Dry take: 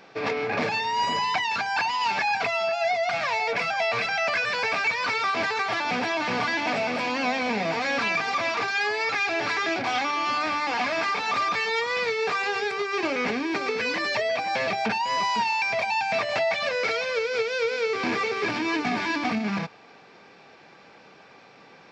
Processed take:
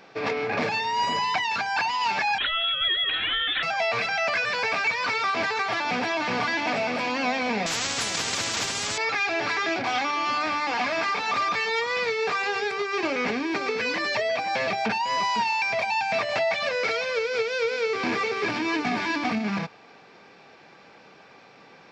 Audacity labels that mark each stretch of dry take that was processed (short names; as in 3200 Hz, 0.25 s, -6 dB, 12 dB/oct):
2.380000	3.630000	inverted band carrier 4000 Hz
7.660000	8.980000	spectral compressor 10:1